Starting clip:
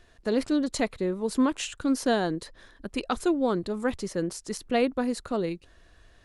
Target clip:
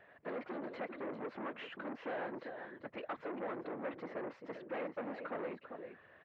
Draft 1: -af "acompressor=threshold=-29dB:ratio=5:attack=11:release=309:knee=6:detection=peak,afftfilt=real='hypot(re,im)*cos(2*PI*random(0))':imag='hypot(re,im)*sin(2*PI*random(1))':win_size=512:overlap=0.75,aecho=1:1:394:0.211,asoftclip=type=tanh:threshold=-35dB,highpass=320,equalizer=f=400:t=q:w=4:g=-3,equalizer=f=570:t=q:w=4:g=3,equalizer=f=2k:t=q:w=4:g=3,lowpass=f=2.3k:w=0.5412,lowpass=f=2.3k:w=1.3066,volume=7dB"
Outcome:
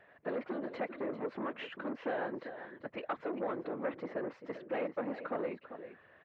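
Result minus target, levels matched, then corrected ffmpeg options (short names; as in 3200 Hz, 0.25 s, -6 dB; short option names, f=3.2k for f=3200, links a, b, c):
soft clip: distortion -6 dB
-af "acompressor=threshold=-29dB:ratio=5:attack=11:release=309:knee=6:detection=peak,afftfilt=real='hypot(re,im)*cos(2*PI*random(0))':imag='hypot(re,im)*sin(2*PI*random(1))':win_size=512:overlap=0.75,aecho=1:1:394:0.211,asoftclip=type=tanh:threshold=-43dB,highpass=320,equalizer=f=400:t=q:w=4:g=-3,equalizer=f=570:t=q:w=4:g=3,equalizer=f=2k:t=q:w=4:g=3,lowpass=f=2.3k:w=0.5412,lowpass=f=2.3k:w=1.3066,volume=7dB"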